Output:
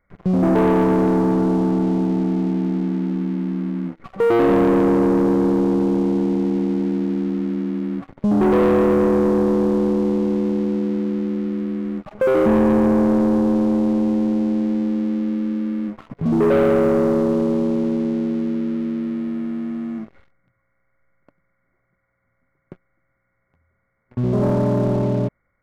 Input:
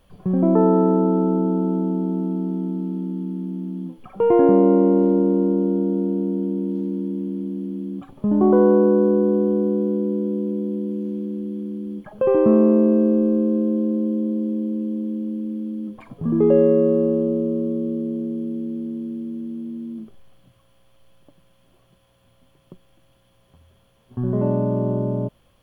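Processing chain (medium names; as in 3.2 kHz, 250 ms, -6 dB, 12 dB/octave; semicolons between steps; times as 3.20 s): knee-point frequency compression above 1.1 kHz 4:1; waveshaping leveller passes 3; trim -6.5 dB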